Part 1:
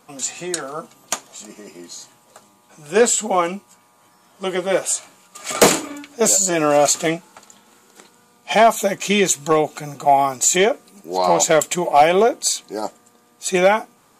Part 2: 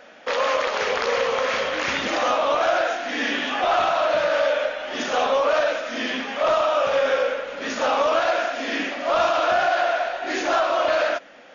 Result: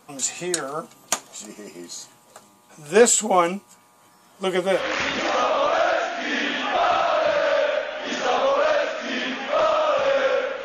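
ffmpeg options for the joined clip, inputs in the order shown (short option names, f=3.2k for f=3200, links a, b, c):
-filter_complex "[0:a]apad=whole_dur=10.64,atrim=end=10.64,atrim=end=4.84,asetpts=PTS-STARTPTS[a];[1:a]atrim=start=1.58:end=7.52,asetpts=PTS-STARTPTS[b];[a][b]acrossfade=d=0.14:c1=tri:c2=tri"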